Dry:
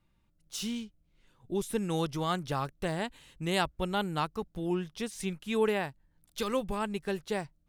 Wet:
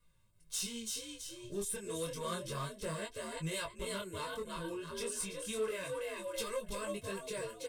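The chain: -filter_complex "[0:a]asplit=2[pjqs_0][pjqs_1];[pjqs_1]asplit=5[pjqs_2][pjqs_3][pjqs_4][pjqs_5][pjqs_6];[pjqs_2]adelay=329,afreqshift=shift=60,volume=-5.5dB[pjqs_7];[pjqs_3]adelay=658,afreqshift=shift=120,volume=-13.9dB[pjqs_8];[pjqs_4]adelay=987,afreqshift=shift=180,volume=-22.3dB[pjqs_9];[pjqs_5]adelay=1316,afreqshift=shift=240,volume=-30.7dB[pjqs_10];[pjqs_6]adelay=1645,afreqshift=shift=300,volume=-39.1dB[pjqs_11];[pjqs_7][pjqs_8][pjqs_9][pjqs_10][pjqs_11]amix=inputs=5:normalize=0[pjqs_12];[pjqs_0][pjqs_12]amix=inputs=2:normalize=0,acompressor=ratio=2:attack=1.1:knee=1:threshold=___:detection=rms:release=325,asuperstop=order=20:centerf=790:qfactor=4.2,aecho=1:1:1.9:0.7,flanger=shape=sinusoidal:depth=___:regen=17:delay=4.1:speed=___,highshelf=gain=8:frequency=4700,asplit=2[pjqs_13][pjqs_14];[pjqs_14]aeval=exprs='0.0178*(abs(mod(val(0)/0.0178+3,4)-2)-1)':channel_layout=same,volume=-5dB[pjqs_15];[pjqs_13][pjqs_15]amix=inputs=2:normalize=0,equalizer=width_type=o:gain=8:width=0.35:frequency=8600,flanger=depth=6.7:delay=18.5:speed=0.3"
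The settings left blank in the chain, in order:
-37dB, 5.2, 1.8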